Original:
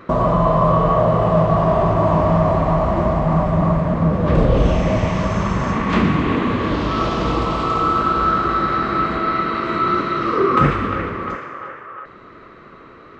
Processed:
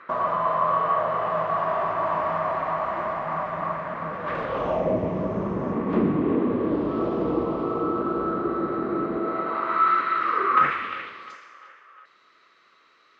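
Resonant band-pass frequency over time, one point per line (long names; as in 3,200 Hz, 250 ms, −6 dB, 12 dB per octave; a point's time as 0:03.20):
resonant band-pass, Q 1.4
0:04.48 1,600 Hz
0:04.98 380 Hz
0:09.20 380 Hz
0:09.92 1,600 Hz
0:10.60 1,600 Hz
0:11.35 5,400 Hz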